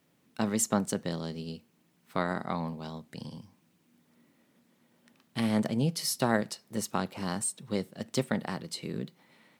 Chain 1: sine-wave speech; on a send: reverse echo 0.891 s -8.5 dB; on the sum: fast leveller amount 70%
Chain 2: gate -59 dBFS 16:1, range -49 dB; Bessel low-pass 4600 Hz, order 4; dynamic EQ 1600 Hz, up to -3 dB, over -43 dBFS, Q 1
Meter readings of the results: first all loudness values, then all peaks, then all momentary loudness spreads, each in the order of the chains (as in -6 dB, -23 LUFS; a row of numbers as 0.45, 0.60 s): -26.0, -33.5 LUFS; -12.0, -12.0 dBFS; 7, 14 LU